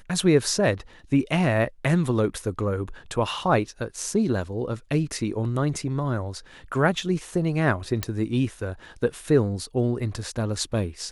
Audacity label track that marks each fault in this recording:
8.030000	8.030000	click

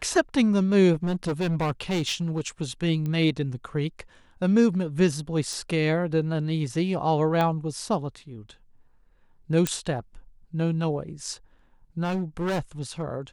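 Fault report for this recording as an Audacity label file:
0.930000	2.480000	clipping −22 dBFS
3.060000	3.060000	click −20 dBFS
5.530000	5.530000	click
7.410000	7.410000	click −14 dBFS
9.670000	9.670000	click −8 dBFS
12.030000	13.030000	clipping −23.5 dBFS

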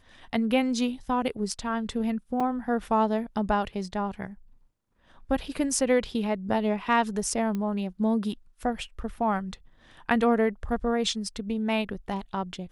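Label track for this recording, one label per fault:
2.400000	2.400000	drop-out 4.4 ms
7.550000	7.550000	click −20 dBFS

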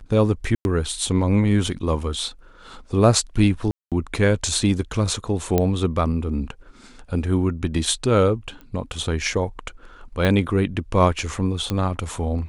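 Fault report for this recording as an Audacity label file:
0.550000	0.650000	drop-out 101 ms
3.710000	3.920000	drop-out 207 ms
5.580000	5.580000	click −6 dBFS
8.610000	8.610000	click −28 dBFS
10.250000	10.250000	click −9 dBFS
11.700000	11.700000	click −11 dBFS

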